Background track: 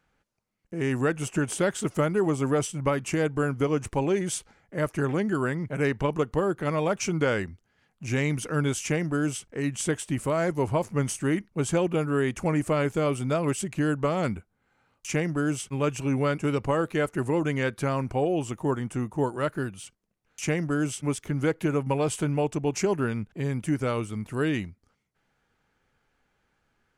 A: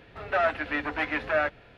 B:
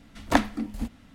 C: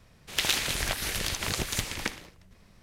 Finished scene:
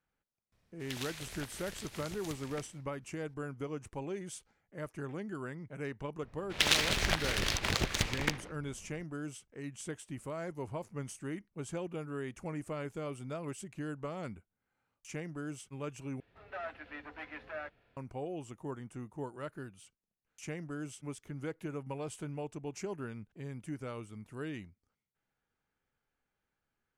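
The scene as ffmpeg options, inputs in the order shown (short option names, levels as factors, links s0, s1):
-filter_complex "[3:a]asplit=2[s0][s1];[0:a]volume=0.188[s2];[s1]adynamicsmooth=sensitivity=7.5:basefreq=2000[s3];[s2]asplit=2[s4][s5];[s4]atrim=end=16.204[s6];[1:a]atrim=end=1.77,asetpts=PTS-STARTPTS,volume=0.141[s7];[s5]atrim=start=17.966[s8];[s0]atrim=end=2.82,asetpts=PTS-STARTPTS,volume=0.15,afade=t=in:d=0.004:c=hsin,afade=t=out:st=2.816:d=0.004:c=hsin,adelay=520[s9];[s3]atrim=end=2.82,asetpts=PTS-STARTPTS,afade=t=in:d=0.004:c=hsin,afade=t=out:st=2.816:d=0.004:c=hsin,adelay=6220[s10];[s6][s7]acrossfade=d=0.004:c1=hsin:c2=hsin[s11];[s11][s8]acrossfade=d=0.004:c1=hsin:c2=hsin[s12];[s12][s9][s10]amix=inputs=3:normalize=0"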